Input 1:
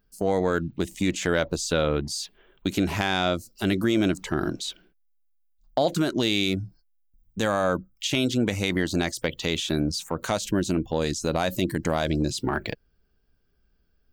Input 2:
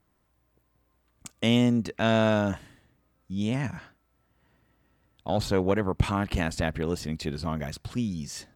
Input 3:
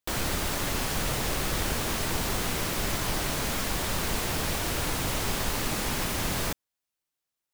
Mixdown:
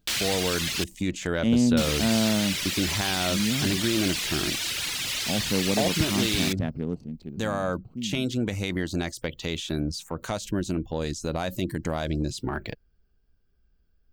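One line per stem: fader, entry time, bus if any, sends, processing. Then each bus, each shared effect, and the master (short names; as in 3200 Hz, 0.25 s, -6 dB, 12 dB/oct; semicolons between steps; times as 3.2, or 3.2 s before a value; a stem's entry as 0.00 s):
-5.0 dB, 0.00 s, no send, low shelf 120 Hz +7.5 dB
6.9 s -8 dB -> 7.15 s -14.5 dB, 0.00 s, no send, Wiener smoothing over 25 samples; bell 210 Hz +11 dB 1.6 oct
0.0 dB, 0.00 s, muted 0.84–1.77, no send, bell 480 Hz -9 dB 3 oct; reverb removal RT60 1.6 s; weighting filter D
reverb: off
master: dry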